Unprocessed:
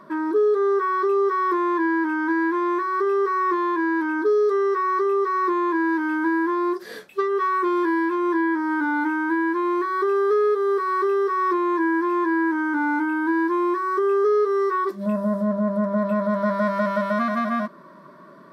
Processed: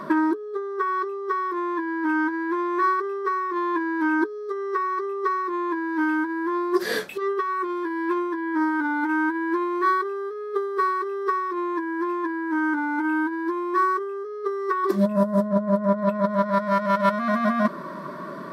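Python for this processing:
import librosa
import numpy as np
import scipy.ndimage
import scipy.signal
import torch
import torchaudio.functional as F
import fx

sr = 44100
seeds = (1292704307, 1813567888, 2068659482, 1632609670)

y = fx.over_compress(x, sr, threshold_db=-27.0, ratio=-0.5)
y = y * librosa.db_to_amplitude(4.5)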